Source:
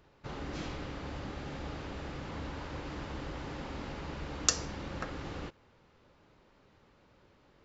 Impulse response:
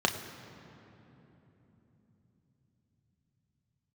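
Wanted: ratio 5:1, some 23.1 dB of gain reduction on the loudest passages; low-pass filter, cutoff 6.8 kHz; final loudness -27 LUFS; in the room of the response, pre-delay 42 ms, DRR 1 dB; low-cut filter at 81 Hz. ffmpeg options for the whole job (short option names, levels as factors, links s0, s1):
-filter_complex "[0:a]highpass=81,lowpass=6800,acompressor=threshold=0.00224:ratio=5,asplit=2[s0][s1];[1:a]atrim=start_sample=2205,adelay=42[s2];[s1][s2]afir=irnorm=-1:irlink=0,volume=0.251[s3];[s0][s3]amix=inputs=2:normalize=0,volume=20"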